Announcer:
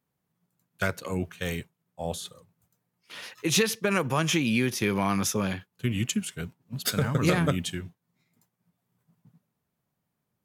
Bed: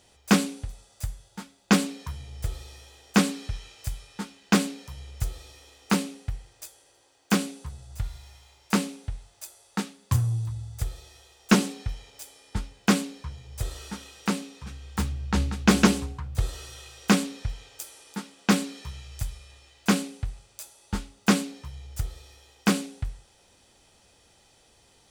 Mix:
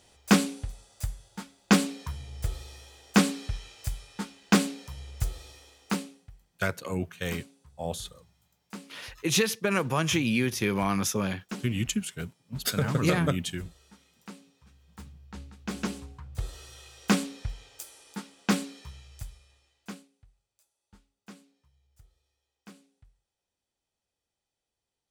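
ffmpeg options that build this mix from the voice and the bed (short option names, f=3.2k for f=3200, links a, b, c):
-filter_complex "[0:a]adelay=5800,volume=-1dB[a];[1:a]volume=14.5dB,afade=t=out:st=5.51:d=0.78:silence=0.125893,afade=t=in:st=15.61:d=1.43:silence=0.177828,afade=t=out:st=18.38:d=1.7:silence=0.0595662[b];[a][b]amix=inputs=2:normalize=0"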